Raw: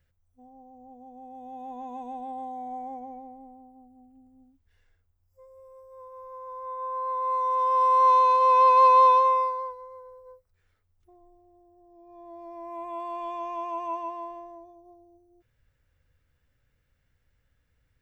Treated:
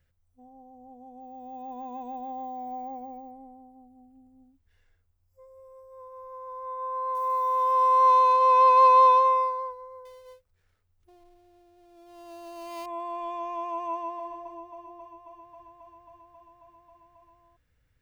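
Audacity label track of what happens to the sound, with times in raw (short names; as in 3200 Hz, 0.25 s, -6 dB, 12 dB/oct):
1.210000	3.310000	careless resampling rate divided by 2×, down none, up hold
7.150000	8.330000	sample gate under -44 dBFS
10.050000	12.860000	switching dead time of 0.15 ms
13.910000	14.320000	echo throw 0.27 s, feedback 85%, level -10.5 dB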